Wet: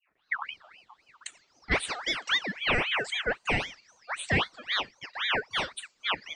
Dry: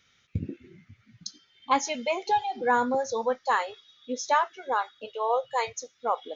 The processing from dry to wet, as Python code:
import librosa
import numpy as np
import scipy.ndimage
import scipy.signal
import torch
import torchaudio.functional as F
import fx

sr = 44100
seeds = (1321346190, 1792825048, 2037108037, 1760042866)

y = fx.tape_start_head(x, sr, length_s=0.51)
y = fx.ring_lfo(y, sr, carrier_hz=1900.0, swing_pct=50, hz=3.8)